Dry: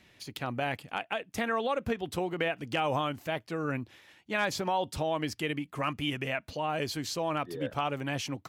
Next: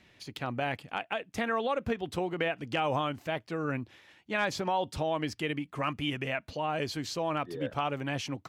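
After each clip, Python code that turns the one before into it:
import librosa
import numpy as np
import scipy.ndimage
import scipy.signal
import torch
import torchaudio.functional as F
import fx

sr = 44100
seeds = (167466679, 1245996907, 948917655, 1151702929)

y = fx.high_shelf(x, sr, hz=9300.0, db=-10.5)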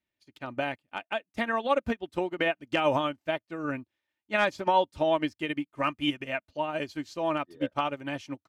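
y = x + 0.42 * np.pad(x, (int(3.3 * sr / 1000.0), 0))[:len(x)]
y = fx.upward_expand(y, sr, threshold_db=-49.0, expansion=2.5)
y = y * librosa.db_to_amplitude(7.0)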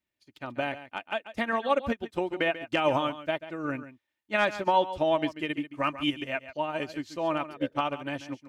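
y = x + 10.0 ** (-13.5 / 20.0) * np.pad(x, (int(139 * sr / 1000.0), 0))[:len(x)]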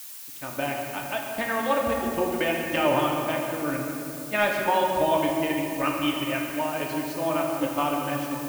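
y = fx.room_shoebox(x, sr, seeds[0], volume_m3=120.0, walls='hard', distance_m=0.42)
y = fx.dmg_noise_colour(y, sr, seeds[1], colour='blue', level_db=-41.0)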